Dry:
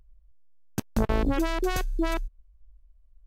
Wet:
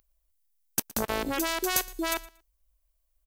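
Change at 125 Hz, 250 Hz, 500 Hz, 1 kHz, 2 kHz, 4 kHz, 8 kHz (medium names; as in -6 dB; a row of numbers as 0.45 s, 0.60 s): -13.5 dB, -6.0 dB, -3.0 dB, 0.0 dB, +2.5 dB, +6.0 dB, +11.0 dB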